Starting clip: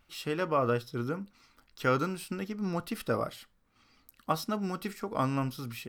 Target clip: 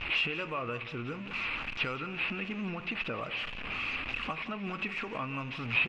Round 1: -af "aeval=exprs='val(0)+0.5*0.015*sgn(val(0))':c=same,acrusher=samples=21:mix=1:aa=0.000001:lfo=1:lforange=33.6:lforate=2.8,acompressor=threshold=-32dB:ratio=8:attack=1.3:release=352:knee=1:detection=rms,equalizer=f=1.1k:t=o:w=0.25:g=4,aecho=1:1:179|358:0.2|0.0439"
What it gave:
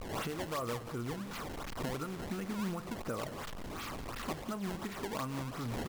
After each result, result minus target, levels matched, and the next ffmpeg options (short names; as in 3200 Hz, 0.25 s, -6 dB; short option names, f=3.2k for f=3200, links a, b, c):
2000 Hz band -8.5 dB; decimation with a swept rate: distortion +10 dB
-af "aeval=exprs='val(0)+0.5*0.015*sgn(val(0))':c=same,acrusher=samples=21:mix=1:aa=0.000001:lfo=1:lforange=33.6:lforate=2.8,acompressor=threshold=-32dB:ratio=8:attack=1.3:release=352:knee=1:detection=rms,lowpass=f=2.6k:t=q:w=7.7,equalizer=f=1.1k:t=o:w=0.25:g=4,aecho=1:1:179|358:0.2|0.0439"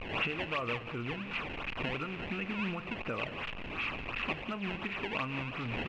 decimation with a swept rate: distortion +10 dB
-af "aeval=exprs='val(0)+0.5*0.015*sgn(val(0))':c=same,acrusher=samples=4:mix=1:aa=0.000001:lfo=1:lforange=6.4:lforate=2.8,acompressor=threshold=-32dB:ratio=8:attack=1.3:release=352:knee=1:detection=rms,lowpass=f=2.6k:t=q:w=7.7,equalizer=f=1.1k:t=o:w=0.25:g=4,aecho=1:1:179|358:0.2|0.0439"